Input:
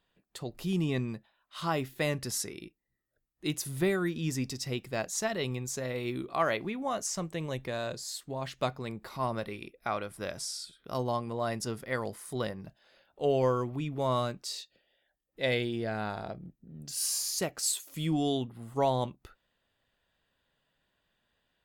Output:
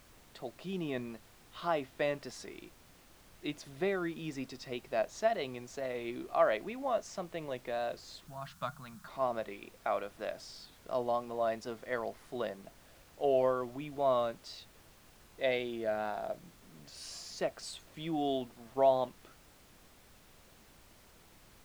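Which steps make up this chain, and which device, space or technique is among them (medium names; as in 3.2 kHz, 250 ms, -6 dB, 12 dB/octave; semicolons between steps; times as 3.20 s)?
horn gramophone (band-pass 240–3700 Hz; peaking EQ 660 Hz +9 dB 0.33 oct; wow and flutter; pink noise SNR 23 dB); 8.27–9.08 s: FFT filter 110 Hz 0 dB, 160 Hz +11 dB, 400 Hz -24 dB, 1.4 kHz +6 dB, 2 kHz -8 dB, 7.3 kHz +3 dB; trim -4 dB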